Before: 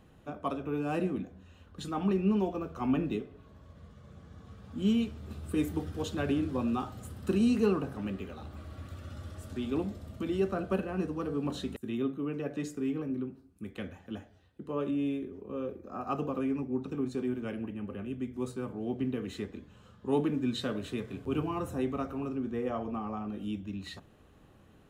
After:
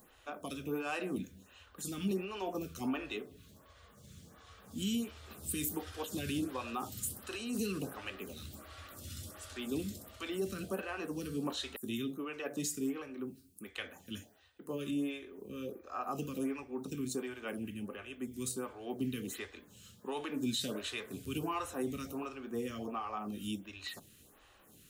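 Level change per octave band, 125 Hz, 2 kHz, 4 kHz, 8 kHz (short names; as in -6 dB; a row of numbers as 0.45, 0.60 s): -8.0, +1.0, +3.0, +10.5 dB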